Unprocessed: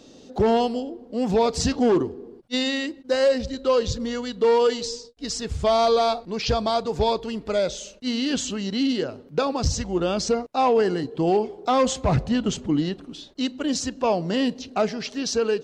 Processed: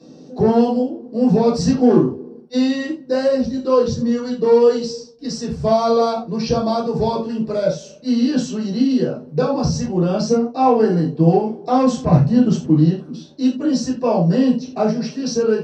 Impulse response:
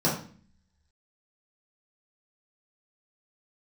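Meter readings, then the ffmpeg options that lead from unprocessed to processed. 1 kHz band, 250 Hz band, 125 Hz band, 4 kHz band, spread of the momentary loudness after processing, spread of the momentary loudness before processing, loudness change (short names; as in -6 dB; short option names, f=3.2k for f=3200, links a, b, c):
+3.0 dB, +9.0 dB, +10.5 dB, -3.0 dB, 9 LU, 9 LU, +6.0 dB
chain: -filter_complex "[1:a]atrim=start_sample=2205,atrim=end_sample=4410[a];[0:a][a]afir=irnorm=-1:irlink=0,volume=-12dB"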